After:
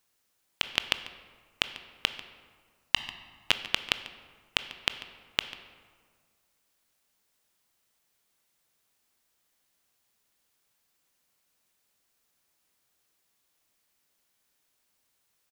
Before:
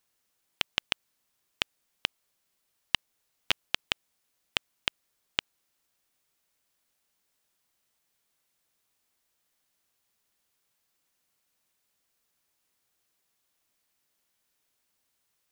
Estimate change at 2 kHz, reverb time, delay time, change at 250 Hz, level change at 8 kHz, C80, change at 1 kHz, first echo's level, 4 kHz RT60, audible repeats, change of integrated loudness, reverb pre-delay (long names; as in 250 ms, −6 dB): +2.5 dB, 1.8 s, 143 ms, +2.5 dB, +2.0 dB, 12.5 dB, +2.5 dB, −17.5 dB, 1.0 s, 1, +2.0 dB, 18 ms